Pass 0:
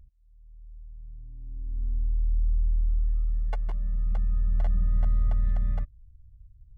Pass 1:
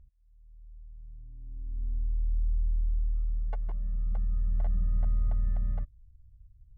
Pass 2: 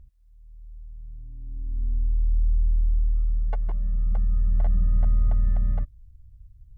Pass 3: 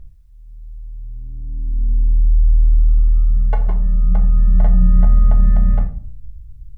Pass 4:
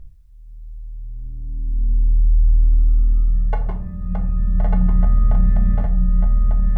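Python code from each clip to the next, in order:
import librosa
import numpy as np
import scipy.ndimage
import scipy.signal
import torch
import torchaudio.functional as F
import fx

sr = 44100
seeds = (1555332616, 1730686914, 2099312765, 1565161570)

y1 = fx.lowpass(x, sr, hz=1200.0, slope=6)
y1 = F.gain(torch.from_numpy(y1), -3.5).numpy()
y2 = fx.peak_eq(y1, sr, hz=280.0, db=2.0, octaves=0.77)
y2 = F.gain(torch.from_numpy(y2), 6.5).numpy()
y3 = fx.room_shoebox(y2, sr, seeds[0], volume_m3=450.0, walls='furnished', distance_m=1.4)
y3 = F.gain(torch.from_numpy(y3), 8.5).numpy()
y4 = y3 + 10.0 ** (-4.0 / 20.0) * np.pad(y3, (int(1196 * sr / 1000.0), 0))[:len(y3)]
y4 = F.gain(torch.from_numpy(y4), -1.0).numpy()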